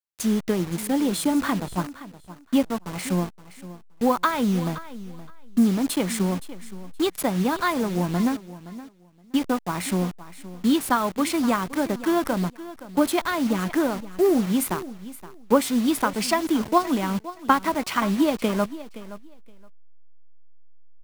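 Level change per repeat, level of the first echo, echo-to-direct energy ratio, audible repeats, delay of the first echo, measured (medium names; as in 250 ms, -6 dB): -15.0 dB, -16.0 dB, -16.0 dB, 2, 520 ms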